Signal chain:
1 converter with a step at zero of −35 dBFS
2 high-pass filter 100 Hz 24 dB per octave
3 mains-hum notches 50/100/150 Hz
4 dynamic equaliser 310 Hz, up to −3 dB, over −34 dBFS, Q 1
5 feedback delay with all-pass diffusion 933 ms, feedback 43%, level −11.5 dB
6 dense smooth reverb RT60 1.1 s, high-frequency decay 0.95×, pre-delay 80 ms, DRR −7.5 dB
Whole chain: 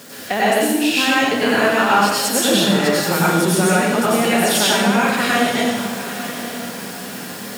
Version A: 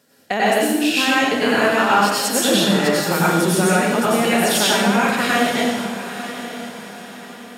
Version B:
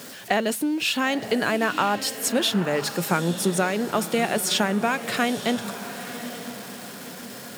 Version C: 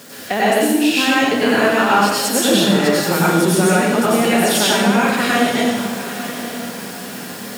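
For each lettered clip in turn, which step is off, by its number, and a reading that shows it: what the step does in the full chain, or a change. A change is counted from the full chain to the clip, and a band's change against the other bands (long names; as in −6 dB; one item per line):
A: 1, distortion level −18 dB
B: 6, change in crest factor +5.0 dB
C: 4, 250 Hz band +2.0 dB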